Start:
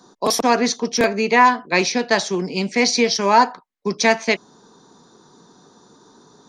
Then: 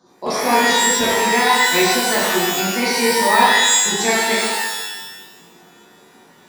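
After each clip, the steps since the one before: treble shelf 6.7 kHz -9 dB; pitch-shifted reverb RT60 1.1 s, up +12 st, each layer -2 dB, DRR -6.5 dB; trim -7.5 dB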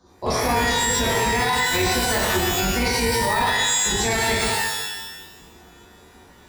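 octave divider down 2 oct, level +1 dB; peak limiter -10 dBFS, peak gain reduction 9 dB; trim -1.5 dB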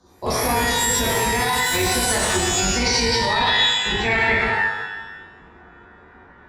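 low-pass sweep 12 kHz -> 1.6 kHz, 1.86–4.75 s

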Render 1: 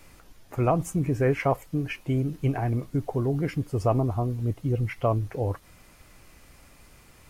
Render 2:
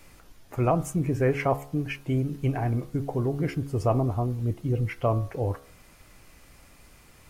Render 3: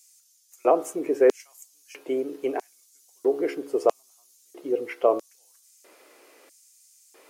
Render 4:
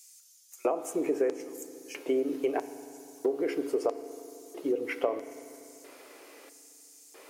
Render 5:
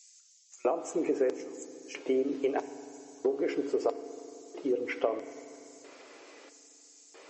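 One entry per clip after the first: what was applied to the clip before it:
de-hum 69.81 Hz, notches 23
LFO high-pass square 0.77 Hz 430–6600 Hz; resonant low shelf 210 Hz -10.5 dB, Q 1.5
compression 12:1, threshold -27 dBFS, peak gain reduction 14.5 dB; reverberation RT60 2.9 s, pre-delay 4 ms, DRR 11.5 dB; trim +2.5 dB
MP3 32 kbps 32 kHz

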